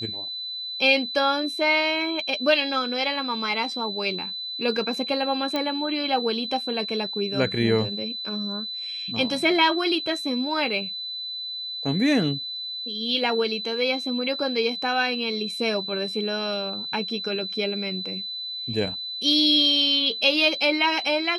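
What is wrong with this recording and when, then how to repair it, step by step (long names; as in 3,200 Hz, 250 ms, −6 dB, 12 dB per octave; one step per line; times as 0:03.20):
whistle 4,000 Hz −30 dBFS
0:05.56: click −13 dBFS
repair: click removal
notch filter 4,000 Hz, Q 30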